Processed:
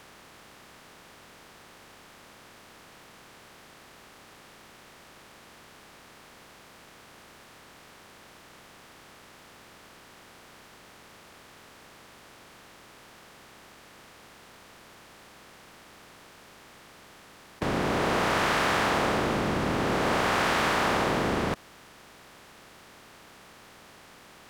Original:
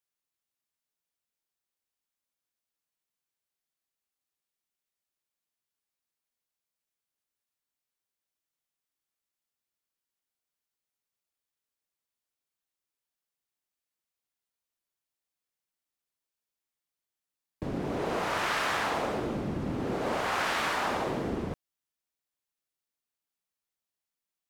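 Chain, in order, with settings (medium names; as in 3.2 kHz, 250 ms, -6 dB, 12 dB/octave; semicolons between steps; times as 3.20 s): spectral levelling over time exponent 0.4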